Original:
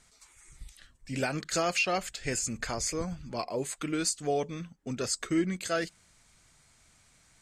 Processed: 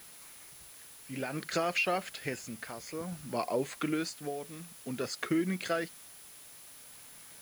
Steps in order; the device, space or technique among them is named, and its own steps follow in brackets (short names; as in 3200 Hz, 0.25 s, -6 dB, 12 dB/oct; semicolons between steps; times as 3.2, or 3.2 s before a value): medium wave at night (BPF 140–3500 Hz; compressor, threshold -30 dBFS, peak gain reduction 7.5 dB; tremolo 0.55 Hz, depth 71%; whine 10000 Hz -58 dBFS; white noise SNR 17 dB); gain +4 dB